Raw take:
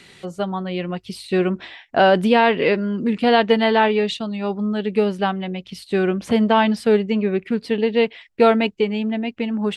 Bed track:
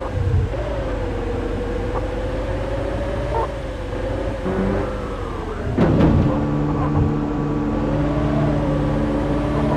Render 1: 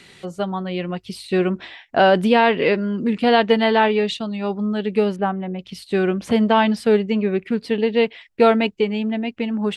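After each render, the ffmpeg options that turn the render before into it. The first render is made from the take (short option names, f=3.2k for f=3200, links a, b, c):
-filter_complex "[0:a]asettb=1/sr,asplit=3[a][b][c];[a]atrim=end=5.164[d];[b]atrim=start=5.16:end=5.59,asetpts=PTS-STARTPTS,afade=t=in:d=0.004:c=qsin,afade=t=out:st=0.426:d=0.004:c=qsin,lowpass=1.5k[e];[c]atrim=start=5.586[f];[d][e]acrossfade=d=0.004:c1=hsin:c2=qsin[g];[g][f]acrossfade=d=0.004:c1=qsin:c2=hsin"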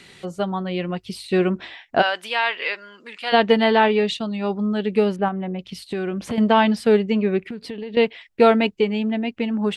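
-filter_complex "[0:a]asplit=3[a][b][c];[a]afade=t=out:st=2.01:d=0.02[d];[b]highpass=1.2k,afade=t=in:st=2.01:d=0.02,afade=t=out:st=3.32:d=0.02[e];[c]afade=t=in:st=3.32:d=0.02[f];[d][e][f]amix=inputs=3:normalize=0,asettb=1/sr,asplit=3[g][h][i];[g]atrim=end=5.284[j];[h]atrim=start=5.28:end=6.38,asetpts=PTS-STARTPTS,afade=t=in:d=0.004:c=qsin,afade=t=out:st=1.096:d=0.004:c=qsin,acompressor=threshold=-22dB:ratio=6:attack=3.2:release=140:knee=1:detection=peak[k];[i]atrim=start=6.376[l];[j][k]acrossfade=d=0.004:c1=hsin:c2=qsin[m];[m][l]acrossfade=d=0.004:c1=qsin:c2=hsin,asettb=1/sr,asplit=3[n][o][p];[n]atrim=end=7.414[q];[o]atrim=start=7.41:end=7.97,asetpts=PTS-STARTPTS,afade=t=in:d=0.004:c=qsin,afade=t=out:st=0.556:d=0.004:c=qsin,acompressor=threshold=-27dB:ratio=16:attack=3.2:release=140:knee=1:detection=peak[r];[p]atrim=start=7.966[s];[q][r]acrossfade=d=0.004:c1=hsin:c2=qsin[t];[t][s]acrossfade=d=0.004:c1=qsin:c2=hsin"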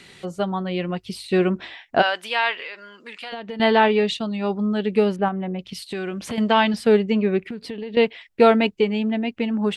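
-filter_complex "[0:a]asettb=1/sr,asplit=3[a][b][c];[a]atrim=end=2.554[d];[b]atrim=start=2.55:end=3.6,asetpts=PTS-STARTPTS,afade=t=in:d=0.004:c=qsin,afade=t=out:st=1.046:d=0.004:c=qsin,acompressor=threshold=-30dB:ratio=6:attack=3.2:release=140:knee=1:detection=peak[e];[c]atrim=start=3.596[f];[d][e]acrossfade=d=0.004:c1=hsin:c2=qsin[g];[g][f]acrossfade=d=0.004:c1=qsin:c2=hsin,asettb=1/sr,asplit=3[h][i][j];[h]atrim=end=5.734[k];[i]atrim=start=5.73:end=6.74,asetpts=PTS-STARTPTS,afade=t=in:d=0.004:c=qsin,afade=t=out:st=1.006:d=0.004:c=qsin,tiltshelf=f=1.3k:g=-3.5[l];[j]atrim=start=6.736[m];[k][l]acrossfade=d=0.004:c1=hsin:c2=qsin[n];[n][m]acrossfade=d=0.004:c1=qsin:c2=hsin"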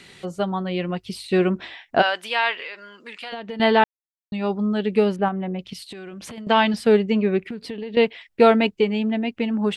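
-filter_complex "[0:a]asettb=1/sr,asplit=3[a][b][c];[a]atrim=end=5.734[d];[b]atrim=start=5.73:end=6.47,asetpts=PTS-STARTPTS,afade=t=in:d=0.004:c=qsin,afade=t=out:st=0.736:d=0.004:c=qsin,acompressor=threshold=-34dB:ratio=6:attack=3.2:release=140:knee=1:detection=peak[e];[c]atrim=start=6.466[f];[d][e]acrossfade=d=0.004:c1=hsin:c2=qsin[g];[g][f]acrossfade=d=0.004:c1=qsin:c2=hsin,asplit=3[h][i][j];[h]atrim=end=3.84,asetpts=PTS-STARTPTS,afade=t=out:st=3.836:d=0.004:c=hsin[k];[i]atrim=start=3.84:end=4.32,asetpts=PTS-STARTPTS,volume=0[l];[j]atrim=start=4.32,asetpts=PTS-STARTPTS,afade=t=in:d=0.004:c=hsin[m];[k][l][m]concat=n=3:v=0:a=1"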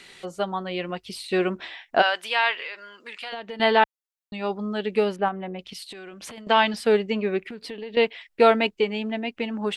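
-af "equalizer=f=120:w=0.53:g=-11"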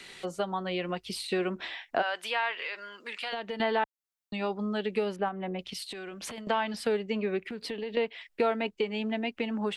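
-filter_complex "[0:a]acrossover=split=150|750|2300[a][b][c][d];[d]alimiter=level_in=2.5dB:limit=-24dB:level=0:latency=1,volume=-2.5dB[e];[a][b][c][e]amix=inputs=4:normalize=0,acompressor=threshold=-29dB:ratio=2.5"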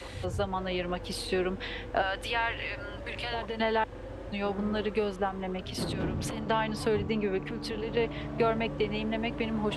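-filter_complex "[1:a]volume=-18dB[a];[0:a][a]amix=inputs=2:normalize=0"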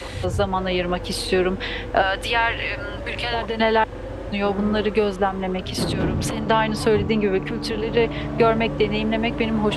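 -af "volume=9.5dB"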